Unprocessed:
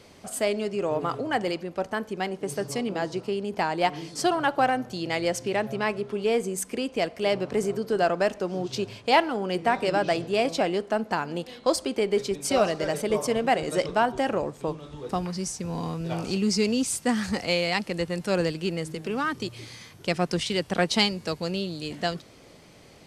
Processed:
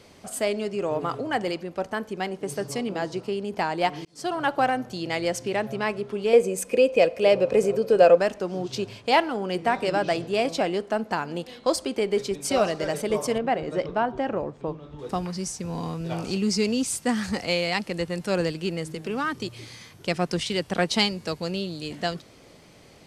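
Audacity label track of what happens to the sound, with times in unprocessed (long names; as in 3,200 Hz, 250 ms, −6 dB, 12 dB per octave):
4.050000	4.470000	fade in
6.330000	8.180000	hollow resonant body resonances 520/2,500 Hz, height 17 dB
13.380000	14.990000	head-to-tape spacing loss at 10 kHz 23 dB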